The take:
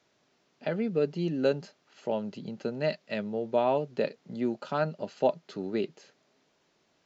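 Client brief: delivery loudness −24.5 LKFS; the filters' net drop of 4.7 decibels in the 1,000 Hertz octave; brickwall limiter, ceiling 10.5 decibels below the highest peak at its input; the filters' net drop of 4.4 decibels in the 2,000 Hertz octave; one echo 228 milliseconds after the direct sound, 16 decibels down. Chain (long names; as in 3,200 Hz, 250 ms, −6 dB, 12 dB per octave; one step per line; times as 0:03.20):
parametric band 1,000 Hz −6 dB
parametric band 2,000 Hz −4 dB
brickwall limiter −25 dBFS
single-tap delay 228 ms −16 dB
level +12 dB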